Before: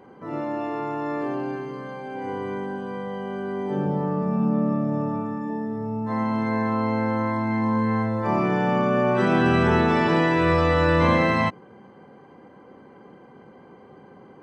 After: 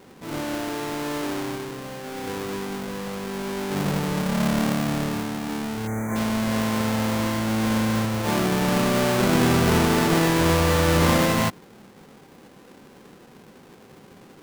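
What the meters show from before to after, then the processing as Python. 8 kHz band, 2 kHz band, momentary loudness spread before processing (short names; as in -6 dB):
n/a, 0.0 dB, 12 LU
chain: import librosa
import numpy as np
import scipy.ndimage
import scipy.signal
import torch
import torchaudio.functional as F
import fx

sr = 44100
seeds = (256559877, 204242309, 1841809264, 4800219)

y = fx.halfwave_hold(x, sr)
y = fx.spec_box(y, sr, start_s=5.87, length_s=0.29, low_hz=2400.0, high_hz=5900.0, gain_db=-28)
y = F.gain(torch.from_numpy(y), -4.5).numpy()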